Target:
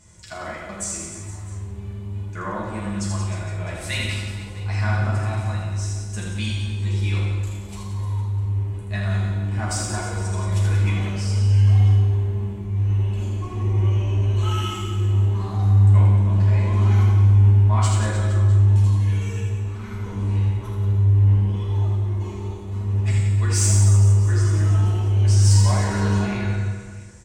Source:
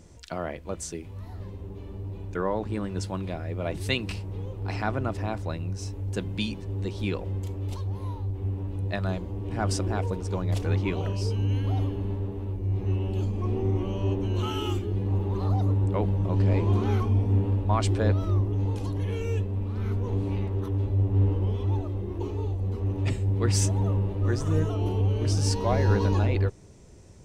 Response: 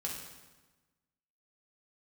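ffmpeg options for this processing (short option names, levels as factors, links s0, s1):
-filter_complex "[0:a]equalizer=f=125:t=o:w=1:g=4,equalizer=f=250:t=o:w=1:g=-6,equalizer=f=500:t=o:w=1:g=-6,equalizer=f=1000:t=o:w=1:g=4,equalizer=f=2000:t=o:w=1:g=6,equalizer=f=8000:t=o:w=1:g=12,asplit=2[s0][s1];[s1]asoftclip=type=tanh:threshold=0.126,volume=0.596[s2];[s0][s2]amix=inputs=2:normalize=0,flanger=delay=2:depth=8.3:regen=-56:speed=0.29:shape=sinusoidal,aecho=1:1:80|180|305|461.2|656.6:0.631|0.398|0.251|0.158|0.1[s3];[1:a]atrim=start_sample=2205,asetrate=57330,aresample=44100[s4];[s3][s4]afir=irnorm=-1:irlink=0"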